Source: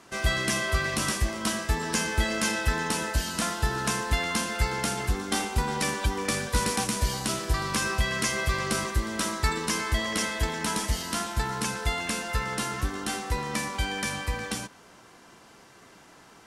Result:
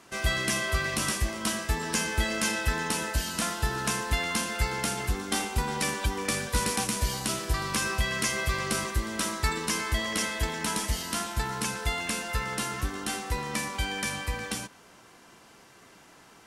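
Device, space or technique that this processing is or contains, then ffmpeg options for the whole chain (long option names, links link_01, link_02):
presence and air boost: -af "equalizer=frequency=2600:width_type=o:width=0.77:gain=2,highshelf=frequency=11000:gain=6.5,volume=-2dB"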